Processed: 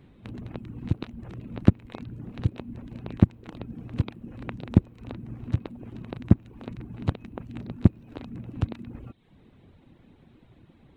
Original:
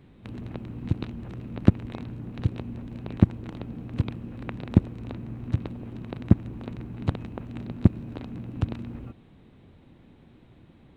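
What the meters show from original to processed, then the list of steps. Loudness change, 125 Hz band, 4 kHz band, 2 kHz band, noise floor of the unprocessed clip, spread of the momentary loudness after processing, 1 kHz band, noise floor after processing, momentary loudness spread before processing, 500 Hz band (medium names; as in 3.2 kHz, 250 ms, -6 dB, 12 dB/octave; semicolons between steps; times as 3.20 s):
+0.5 dB, -0.5 dB, no reading, -0.5 dB, -54 dBFS, 17 LU, -0.5 dB, -57 dBFS, 14 LU, -0.5 dB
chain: reverb removal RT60 0.64 s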